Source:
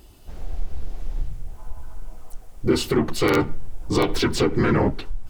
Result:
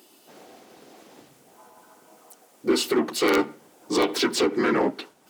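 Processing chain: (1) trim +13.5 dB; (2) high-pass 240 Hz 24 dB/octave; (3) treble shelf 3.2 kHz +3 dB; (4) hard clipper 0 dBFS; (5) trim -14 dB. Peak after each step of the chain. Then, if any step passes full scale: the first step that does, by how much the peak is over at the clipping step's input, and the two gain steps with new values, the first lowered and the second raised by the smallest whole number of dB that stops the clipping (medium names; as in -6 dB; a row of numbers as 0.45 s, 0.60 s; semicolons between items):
+5.0 dBFS, +6.0 dBFS, +6.5 dBFS, 0.0 dBFS, -14.0 dBFS; step 1, 6.5 dB; step 1 +6.5 dB, step 5 -7 dB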